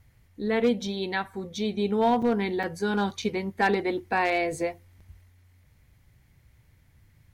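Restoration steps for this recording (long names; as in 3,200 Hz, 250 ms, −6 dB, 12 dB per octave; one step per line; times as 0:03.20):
clipped peaks rebuilt −15.5 dBFS
repair the gap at 0:02.22/0:02.63/0:03.22/0:05.00, 5.1 ms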